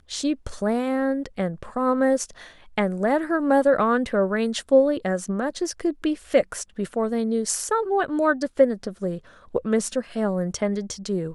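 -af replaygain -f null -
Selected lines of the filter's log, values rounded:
track_gain = +3.8 dB
track_peak = 0.405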